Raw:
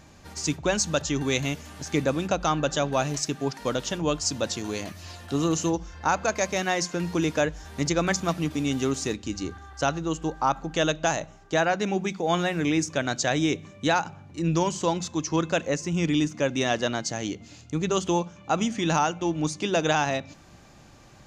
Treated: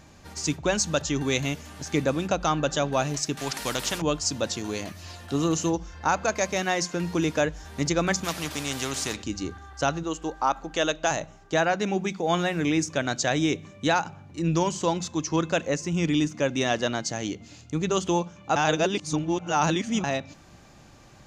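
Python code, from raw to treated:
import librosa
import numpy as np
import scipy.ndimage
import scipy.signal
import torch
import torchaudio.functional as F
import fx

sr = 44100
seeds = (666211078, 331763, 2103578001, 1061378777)

y = fx.spectral_comp(x, sr, ratio=2.0, at=(3.37, 4.02))
y = fx.spectral_comp(y, sr, ratio=2.0, at=(8.23, 9.22), fade=0.02)
y = fx.peak_eq(y, sr, hz=120.0, db=-13.5, octaves=1.3, at=(10.03, 11.11))
y = fx.edit(y, sr, fx.reverse_span(start_s=18.56, length_s=1.48), tone=tone)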